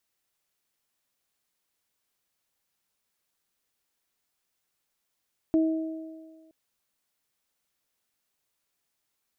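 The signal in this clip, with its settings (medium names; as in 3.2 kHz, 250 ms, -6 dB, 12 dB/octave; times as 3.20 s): additive tone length 0.97 s, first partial 320 Hz, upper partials -12 dB, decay 1.53 s, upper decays 1.87 s, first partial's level -18 dB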